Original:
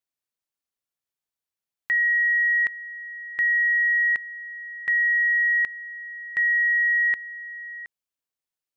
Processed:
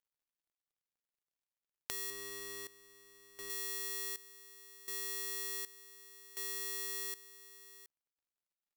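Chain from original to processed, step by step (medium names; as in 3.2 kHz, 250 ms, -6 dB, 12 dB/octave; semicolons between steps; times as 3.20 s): dead-time distortion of 0.24 ms; 2.10–3.50 s: tilt EQ -2 dB/octave; trim +10.5 dB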